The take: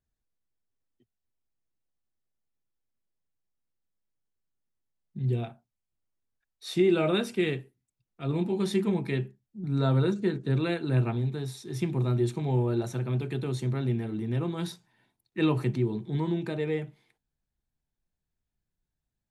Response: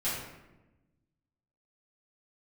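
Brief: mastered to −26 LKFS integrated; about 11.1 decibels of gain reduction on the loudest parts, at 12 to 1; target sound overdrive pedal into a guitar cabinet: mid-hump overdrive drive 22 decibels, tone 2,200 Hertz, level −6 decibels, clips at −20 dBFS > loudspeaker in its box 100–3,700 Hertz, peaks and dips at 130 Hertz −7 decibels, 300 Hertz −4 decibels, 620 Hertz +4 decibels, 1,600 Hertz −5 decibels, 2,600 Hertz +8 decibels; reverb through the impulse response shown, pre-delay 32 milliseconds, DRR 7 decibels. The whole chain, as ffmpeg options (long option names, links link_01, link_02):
-filter_complex "[0:a]acompressor=threshold=-30dB:ratio=12,asplit=2[link_01][link_02];[1:a]atrim=start_sample=2205,adelay=32[link_03];[link_02][link_03]afir=irnorm=-1:irlink=0,volume=-14dB[link_04];[link_01][link_04]amix=inputs=2:normalize=0,asplit=2[link_05][link_06];[link_06]highpass=frequency=720:poles=1,volume=22dB,asoftclip=type=tanh:threshold=-20dB[link_07];[link_05][link_07]amix=inputs=2:normalize=0,lowpass=frequency=2200:poles=1,volume=-6dB,highpass=100,equalizer=frequency=130:width_type=q:width=4:gain=-7,equalizer=frequency=300:width_type=q:width=4:gain=-4,equalizer=frequency=620:width_type=q:width=4:gain=4,equalizer=frequency=1600:width_type=q:width=4:gain=-5,equalizer=frequency=2600:width_type=q:width=4:gain=8,lowpass=frequency=3700:width=0.5412,lowpass=frequency=3700:width=1.3066,volume=5.5dB"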